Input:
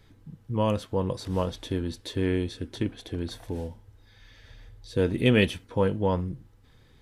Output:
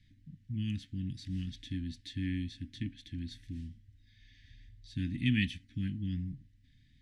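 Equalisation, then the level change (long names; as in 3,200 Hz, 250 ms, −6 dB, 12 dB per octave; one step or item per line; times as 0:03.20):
Chebyshev band-stop filter 280–1,800 Hz, order 4
high-frequency loss of the air 65 metres
−6.0 dB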